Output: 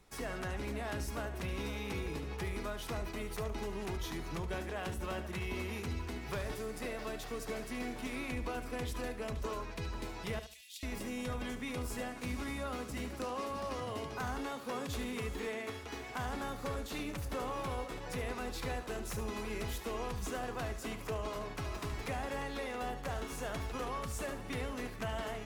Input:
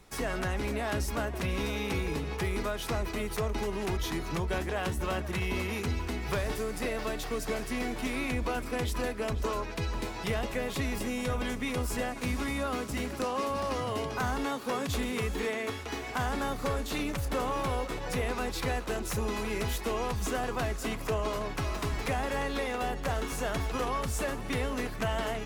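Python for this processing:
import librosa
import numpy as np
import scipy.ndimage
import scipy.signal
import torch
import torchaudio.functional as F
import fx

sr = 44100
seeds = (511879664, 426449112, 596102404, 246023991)

y = fx.cheby2_highpass(x, sr, hz=1200.0, order=4, stop_db=50, at=(10.39, 10.83))
y = fx.echo_feedback(y, sr, ms=73, feedback_pct=23, wet_db=-11)
y = F.gain(torch.from_numpy(y), -7.5).numpy()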